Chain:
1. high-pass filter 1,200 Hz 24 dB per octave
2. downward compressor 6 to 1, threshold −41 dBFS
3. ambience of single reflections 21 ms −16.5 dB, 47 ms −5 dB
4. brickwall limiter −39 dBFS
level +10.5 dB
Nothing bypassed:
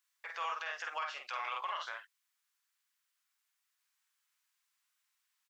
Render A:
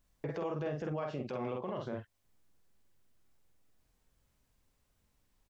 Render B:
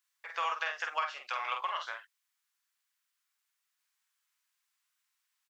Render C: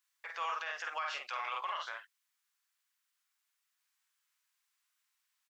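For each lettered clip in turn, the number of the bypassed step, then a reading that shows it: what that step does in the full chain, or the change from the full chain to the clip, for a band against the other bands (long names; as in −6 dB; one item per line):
1, 500 Hz band +25.0 dB
4, average gain reduction 2.0 dB
2, average gain reduction 3.0 dB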